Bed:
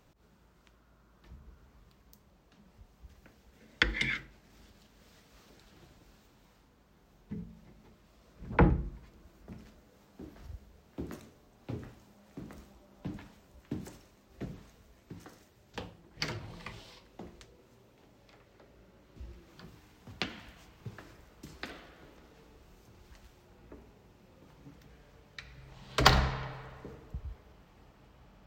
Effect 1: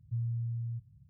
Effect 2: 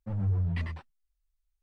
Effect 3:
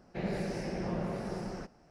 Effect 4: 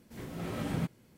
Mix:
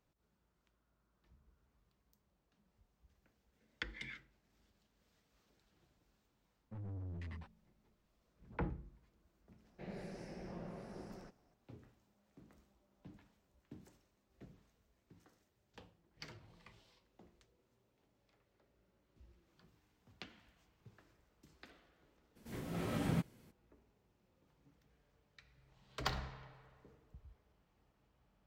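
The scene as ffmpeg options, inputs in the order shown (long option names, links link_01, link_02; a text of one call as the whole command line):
ffmpeg -i bed.wav -i cue0.wav -i cue1.wav -i cue2.wav -i cue3.wav -filter_complex "[0:a]volume=-16.5dB[link_01];[2:a]asoftclip=type=tanh:threshold=-33.5dB,atrim=end=1.62,asetpts=PTS-STARTPTS,volume=-9.5dB,afade=type=in:duration=0.004:curve=hsin,afade=type=out:start_time=1.616:duration=0.004:curve=hsin,adelay=6650[link_02];[3:a]atrim=end=1.9,asetpts=PTS-STARTPTS,volume=-13.5dB,afade=type=in:duration=0.004:curve=hsin,afade=type=out:start_time=1.896:duration=0.004:curve=hsin,adelay=9640[link_03];[4:a]atrim=end=1.17,asetpts=PTS-STARTPTS,volume=-2.5dB,afade=type=in:duration=0.02,afade=type=out:start_time=1.15:duration=0.02,adelay=22350[link_04];[link_01][link_02][link_03][link_04]amix=inputs=4:normalize=0" out.wav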